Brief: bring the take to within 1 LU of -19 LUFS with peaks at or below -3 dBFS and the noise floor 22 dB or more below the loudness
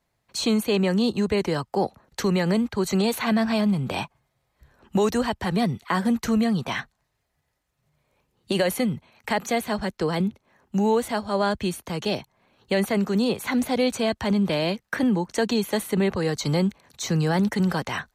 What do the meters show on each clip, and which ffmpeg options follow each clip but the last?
loudness -24.5 LUFS; peak -12.0 dBFS; loudness target -19.0 LUFS
-> -af "volume=5.5dB"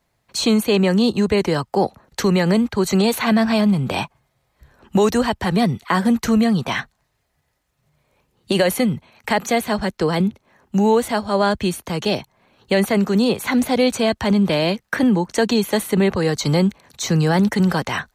loudness -19.0 LUFS; peak -6.5 dBFS; noise floor -70 dBFS

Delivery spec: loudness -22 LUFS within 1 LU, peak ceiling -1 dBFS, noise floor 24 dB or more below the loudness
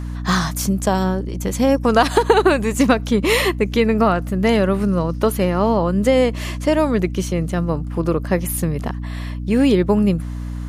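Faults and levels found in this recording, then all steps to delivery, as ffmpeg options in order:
hum 60 Hz; harmonics up to 300 Hz; hum level -24 dBFS; loudness -18.5 LUFS; peak -2.0 dBFS; loudness target -22.0 LUFS
-> -af "bandreject=f=60:t=h:w=4,bandreject=f=120:t=h:w=4,bandreject=f=180:t=h:w=4,bandreject=f=240:t=h:w=4,bandreject=f=300:t=h:w=4"
-af "volume=-3.5dB"

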